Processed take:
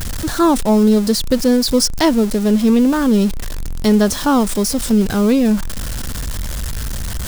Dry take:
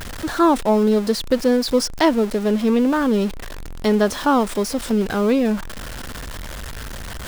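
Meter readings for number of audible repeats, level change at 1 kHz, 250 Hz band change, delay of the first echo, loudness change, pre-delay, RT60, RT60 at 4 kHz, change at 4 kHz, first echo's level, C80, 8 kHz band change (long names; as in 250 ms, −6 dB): no echo audible, 0.0 dB, +5.5 dB, no echo audible, +3.5 dB, no reverb audible, no reverb audible, no reverb audible, +5.5 dB, no echo audible, no reverb audible, +9.0 dB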